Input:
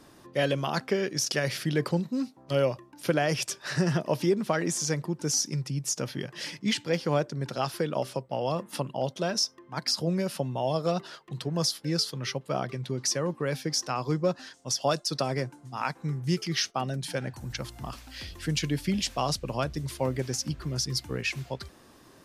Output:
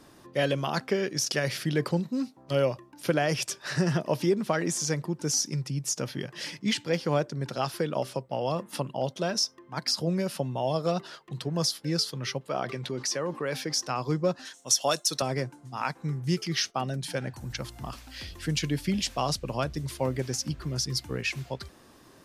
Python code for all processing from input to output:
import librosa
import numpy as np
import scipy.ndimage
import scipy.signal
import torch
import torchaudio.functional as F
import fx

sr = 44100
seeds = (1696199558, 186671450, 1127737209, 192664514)

y = fx.chain(x, sr, fx.highpass(hz=360.0, slope=6),
    fx.high_shelf(hz=5700.0, db=-6.0),
    fx.env_flatten(amount_pct=50), at=(12.48, 13.74))
y = fx.chain(y, sr, fx.highpass(hz=300.0, slope=6),
    fx.high_shelf(hz=3500.0, db=10.0),
    fx.notch(hz=4800.0, q=5.2), at=(14.45, 15.22))